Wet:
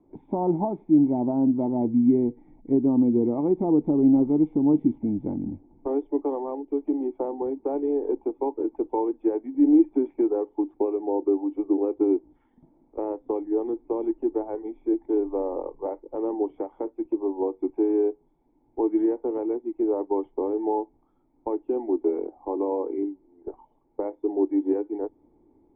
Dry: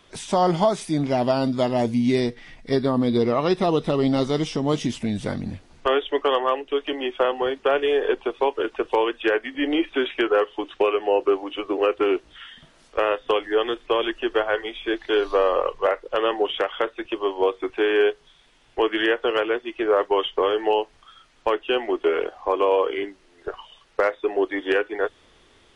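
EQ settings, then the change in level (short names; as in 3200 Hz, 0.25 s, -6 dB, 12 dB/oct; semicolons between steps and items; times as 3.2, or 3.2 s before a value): vocal tract filter u; +7.5 dB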